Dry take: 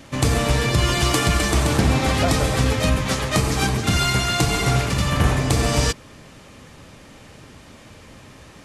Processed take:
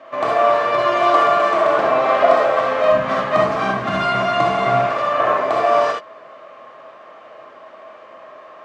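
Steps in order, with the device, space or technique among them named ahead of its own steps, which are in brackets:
tin-can telephone (band-pass filter 510–2,100 Hz; hollow resonant body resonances 650/1,100 Hz, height 16 dB, ringing for 30 ms)
0:02.91–0:04.86: low shelf with overshoot 290 Hz +10.5 dB, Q 1.5
reverb whose tail is shaped and stops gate 90 ms rising, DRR −0.5 dB
level −1 dB

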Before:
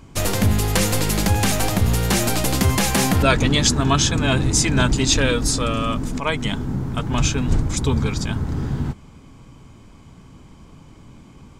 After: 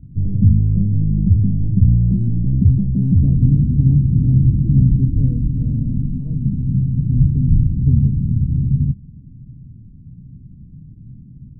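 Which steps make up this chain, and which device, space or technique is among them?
the neighbour's flat through the wall (low-pass filter 220 Hz 24 dB per octave; parametric band 130 Hz +6.5 dB 0.95 octaves)
level +3.5 dB

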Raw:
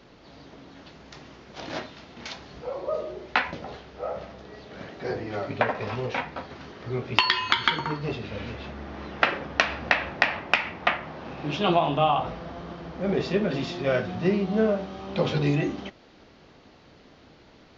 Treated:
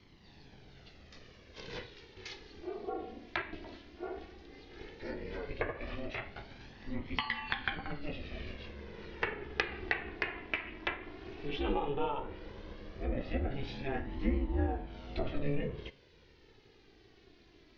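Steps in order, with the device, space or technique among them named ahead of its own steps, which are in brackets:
treble cut that deepens with the level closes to 1,800 Hz, closed at −22.5 dBFS
alien voice (ring modulation 140 Hz; flanger 0.14 Hz, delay 0.9 ms, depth 2.2 ms, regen +26%)
low-pass filter 6,100 Hz 24 dB per octave
flat-topped bell 870 Hz −8 dB
hum removal 136.1 Hz, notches 33

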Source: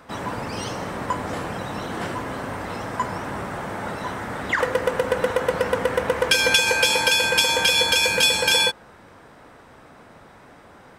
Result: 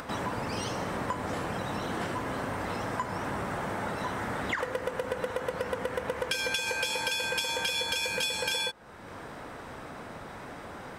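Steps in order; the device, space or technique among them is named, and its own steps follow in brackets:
upward and downward compression (upward compression, threshold −35 dBFS; downward compressor 4 to 1, threshold −30 dBFS, peak gain reduction 14.5 dB)

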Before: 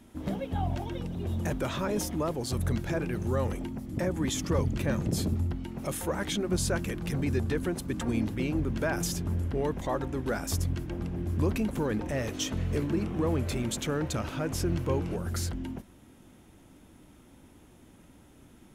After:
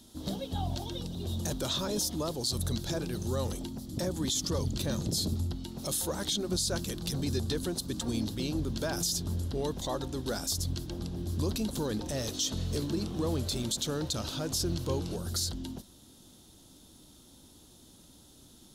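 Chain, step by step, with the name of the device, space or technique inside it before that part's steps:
over-bright horn tweeter (high shelf with overshoot 3,000 Hz +10 dB, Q 3; brickwall limiter −18 dBFS, peak gain reduction 9 dB)
level −3 dB

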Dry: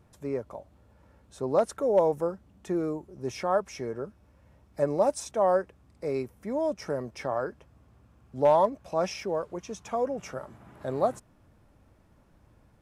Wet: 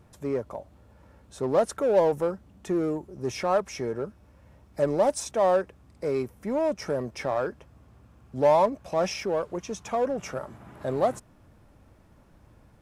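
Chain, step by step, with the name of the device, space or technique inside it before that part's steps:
parallel distortion (in parallel at −4 dB: hard clipping −30.5 dBFS, distortion −4 dB)

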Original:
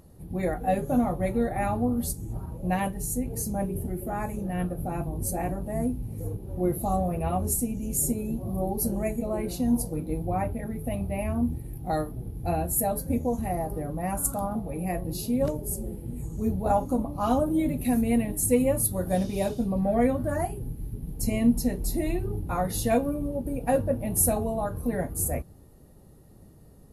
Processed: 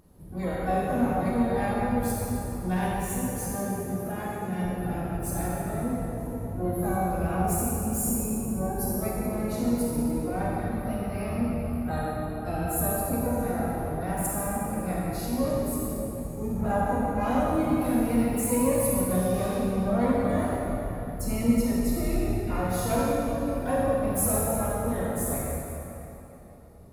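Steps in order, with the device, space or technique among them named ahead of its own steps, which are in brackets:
shimmer-style reverb (pitch-shifted copies added +12 semitones −12 dB; convolution reverb RT60 3.4 s, pre-delay 28 ms, DRR −5.5 dB)
0:03.55–0:04.65: high-pass filter 110 Hz 12 dB per octave
level −6.5 dB

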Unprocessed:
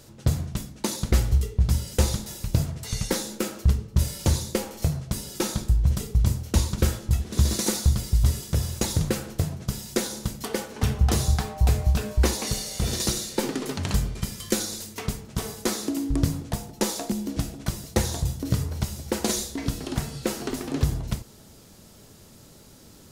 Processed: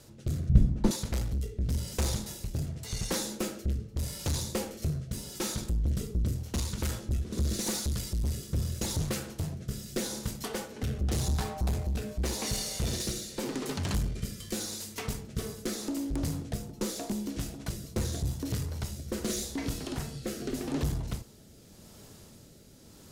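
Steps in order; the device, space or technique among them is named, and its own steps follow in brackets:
overdriven rotary cabinet (tube saturation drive 24 dB, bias 0.3; rotating-speaker cabinet horn 0.85 Hz)
0:00.49–0:00.91: spectral tilt −4.5 dB per octave

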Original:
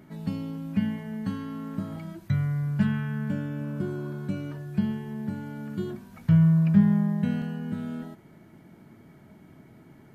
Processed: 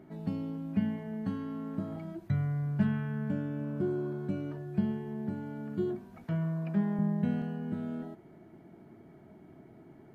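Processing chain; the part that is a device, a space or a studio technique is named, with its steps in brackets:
inside a helmet (high-shelf EQ 3,300 Hz −8 dB; hollow resonant body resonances 370/680 Hz, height 8 dB, ringing for 20 ms)
0:06.24–0:06.99: high-pass filter 270 Hz 12 dB per octave
level −5 dB

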